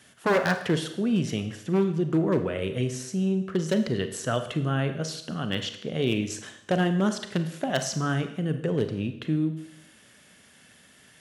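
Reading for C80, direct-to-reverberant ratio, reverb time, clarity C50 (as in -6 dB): 12.5 dB, 8.0 dB, 0.80 s, 10.0 dB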